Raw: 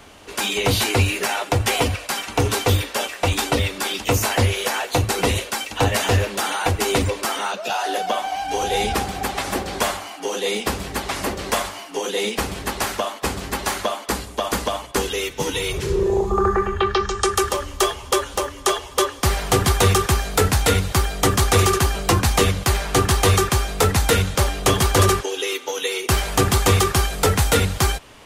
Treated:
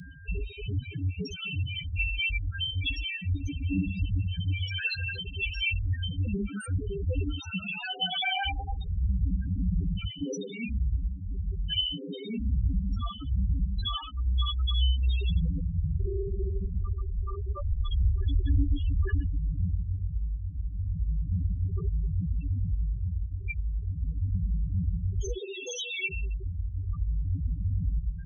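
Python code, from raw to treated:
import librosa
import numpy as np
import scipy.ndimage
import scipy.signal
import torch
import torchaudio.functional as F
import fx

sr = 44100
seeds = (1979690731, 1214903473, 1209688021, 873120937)

y = fx.tone_stack(x, sr, knobs='6-0-2')
y = fx.fuzz(y, sr, gain_db=49.0, gate_db=-58.0)
y = fx.over_compress(y, sr, threshold_db=-20.0, ratio=-0.5)
y = fx.echo_heads(y, sr, ms=73, heads='second and third', feedback_pct=54, wet_db=-9.0, at=(3.17, 5.49))
y = y + 10.0 ** (-45.0 / 20.0) * np.sin(2.0 * np.pi * 1600.0 * np.arange(len(y)) / sr)
y = fx.high_shelf(y, sr, hz=11000.0, db=-6.5)
y = fx.rev_fdn(y, sr, rt60_s=1.3, lf_ratio=1.25, hf_ratio=0.75, size_ms=35.0, drr_db=0.0)
y = fx.spec_topn(y, sr, count=4)
y = fx.phaser_stages(y, sr, stages=2, low_hz=190.0, high_hz=3900.0, hz=0.33, feedback_pct=40)
y = fx.band_squash(y, sr, depth_pct=40)
y = y * 10.0 ** (-7.0 / 20.0)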